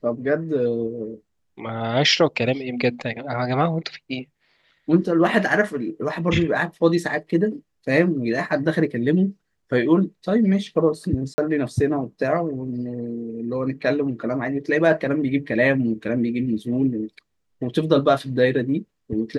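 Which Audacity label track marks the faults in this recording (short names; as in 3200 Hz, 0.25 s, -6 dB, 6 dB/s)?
11.340000	11.380000	gap 40 ms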